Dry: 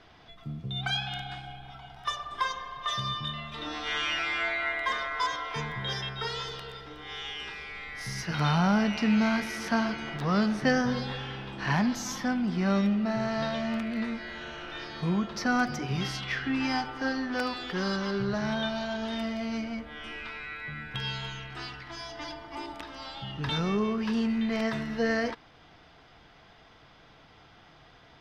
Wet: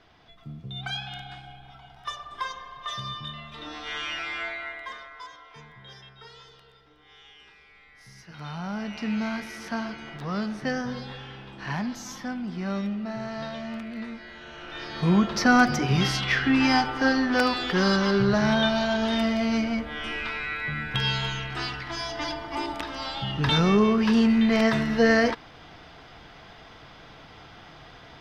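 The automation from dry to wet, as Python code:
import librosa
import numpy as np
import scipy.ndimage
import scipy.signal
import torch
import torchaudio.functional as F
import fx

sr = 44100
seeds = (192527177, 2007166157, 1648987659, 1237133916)

y = fx.gain(x, sr, db=fx.line((4.42, -2.5), (5.29, -14.0), (8.3, -14.0), (9.07, -4.0), (14.42, -4.0), (15.17, 8.0)))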